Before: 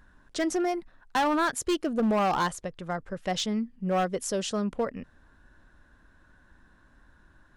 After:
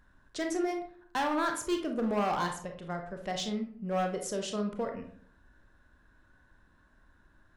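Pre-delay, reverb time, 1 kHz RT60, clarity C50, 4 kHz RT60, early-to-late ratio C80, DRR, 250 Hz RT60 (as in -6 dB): 26 ms, 0.55 s, 0.50 s, 7.5 dB, 0.30 s, 12.0 dB, 3.5 dB, 0.70 s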